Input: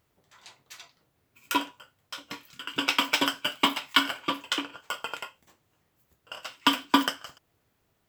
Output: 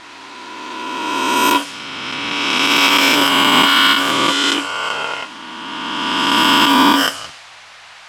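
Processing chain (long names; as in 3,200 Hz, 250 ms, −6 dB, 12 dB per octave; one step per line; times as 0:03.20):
peak hold with a rise ahead of every peak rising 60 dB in 2.96 s
noise in a band 690–11,000 Hz −42 dBFS
low-pass that shuts in the quiet parts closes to 2,600 Hz, open at −17 dBFS
boost into a limiter +9 dB
level −1 dB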